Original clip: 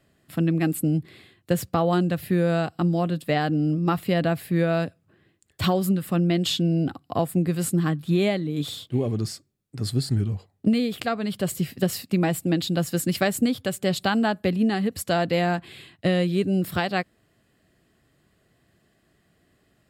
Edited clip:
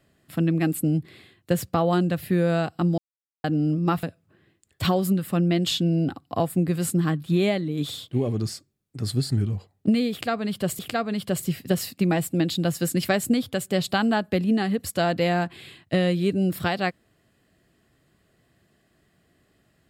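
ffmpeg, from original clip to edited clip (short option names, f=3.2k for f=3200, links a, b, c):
-filter_complex "[0:a]asplit=5[a][b][c][d][e];[a]atrim=end=2.98,asetpts=PTS-STARTPTS,afade=t=out:st=2.976:d=0.004:c=hsin[f];[b]atrim=start=2.98:end=3.44,asetpts=PTS-STARTPTS,volume=0[g];[c]atrim=start=3.44:end=4.032,asetpts=PTS-STARTPTS,afade=t=in:d=0.004:c=hsin[h];[d]atrim=start=4.818:end=11.582[i];[e]atrim=start=10.908[j];[f][g][h]concat=n=3:v=0:a=1[k];[k][i]acrossfade=d=0.004:c1=hsin:c2=hsin[l];[l][j]acrossfade=d=0.004:c1=hsin:c2=hsin"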